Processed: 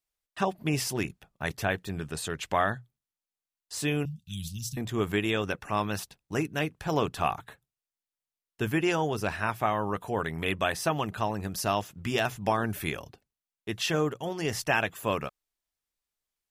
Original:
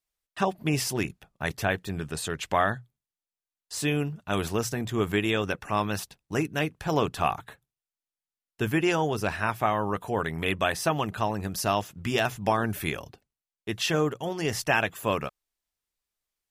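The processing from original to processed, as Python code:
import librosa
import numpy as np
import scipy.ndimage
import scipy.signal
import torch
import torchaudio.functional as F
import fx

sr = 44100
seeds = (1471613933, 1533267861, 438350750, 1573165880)

y = fx.ellip_bandstop(x, sr, low_hz=170.0, high_hz=3500.0, order=3, stop_db=60, at=(4.05, 4.77))
y = y * 10.0 ** (-2.0 / 20.0)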